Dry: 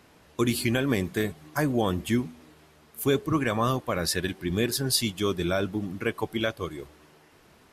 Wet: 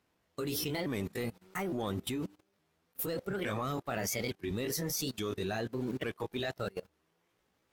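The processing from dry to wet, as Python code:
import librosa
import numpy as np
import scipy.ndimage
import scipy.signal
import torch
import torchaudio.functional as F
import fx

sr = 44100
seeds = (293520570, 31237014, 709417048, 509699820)

y = fx.pitch_ramps(x, sr, semitones=5.0, every_ms=862)
y = fx.leveller(y, sr, passes=1)
y = fx.level_steps(y, sr, step_db=17)
y = fx.upward_expand(y, sr, threshold_db=-50.0, expansion=1.5)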